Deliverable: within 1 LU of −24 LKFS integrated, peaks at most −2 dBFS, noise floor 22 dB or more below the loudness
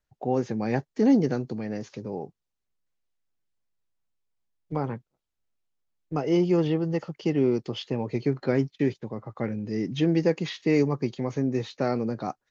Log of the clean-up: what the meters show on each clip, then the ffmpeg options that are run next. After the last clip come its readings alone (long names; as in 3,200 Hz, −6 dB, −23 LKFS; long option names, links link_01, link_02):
integrated loudness −27.0 LKFS; sample peak −10.5 dBFS; target loudness −24.0 LKFS
→ -af "volume=3dB"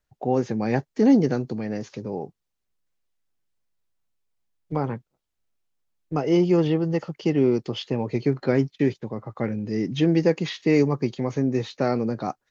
integrated loudness −24.0 LKFS; sample peak −7.5 dBFS; background noise floor −80 dBFS